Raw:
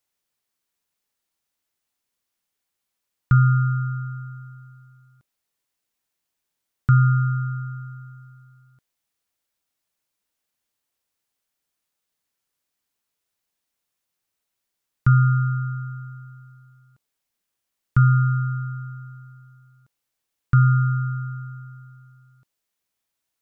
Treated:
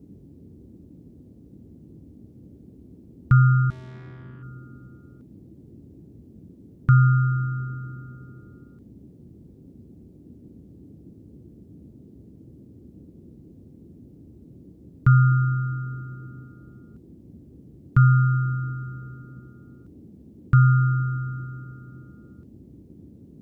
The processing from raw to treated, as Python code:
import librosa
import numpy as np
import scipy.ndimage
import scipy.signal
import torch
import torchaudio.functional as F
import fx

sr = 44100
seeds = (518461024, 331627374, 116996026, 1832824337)

y = fx.tube_stage(x, sr, drive_db=41.0, bias=0.4, at=(3.7, 4.43))
y = fx.dmg_noise_band(y, sr, seeds[0], low_hz=56.0, high_hz=320.0, level_db=-47.0)